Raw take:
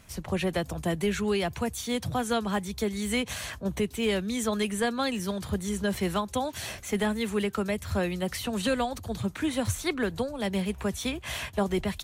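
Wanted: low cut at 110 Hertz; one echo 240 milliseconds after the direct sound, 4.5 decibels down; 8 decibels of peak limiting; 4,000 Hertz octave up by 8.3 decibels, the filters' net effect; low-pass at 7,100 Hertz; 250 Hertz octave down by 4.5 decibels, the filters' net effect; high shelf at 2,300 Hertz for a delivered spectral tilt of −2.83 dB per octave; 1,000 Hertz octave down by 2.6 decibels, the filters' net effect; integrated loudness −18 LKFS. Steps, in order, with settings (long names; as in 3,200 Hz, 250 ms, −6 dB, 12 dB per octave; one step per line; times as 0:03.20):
high-pass filter 110 Hz
low-pass filter 7,100 Hz
parametric band 250 Hz −5.5 dB
parametric band 1,000 Hz −5 dB
high-shelf EQ 2,300 Hz +7.5 dB
parametric band 4,000 Hz +4.5 dB
brickwall limiter −20.5 dBFS
single-tap delay 240 ms −4.5 dB
level +11.5 dB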